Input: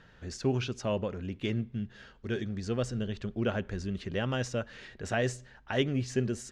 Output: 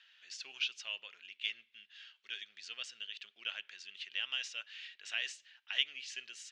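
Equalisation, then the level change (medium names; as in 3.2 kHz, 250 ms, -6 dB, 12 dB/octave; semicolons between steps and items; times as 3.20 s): ladder band-pass 3.3 kHz, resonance 50%; +11.0 dB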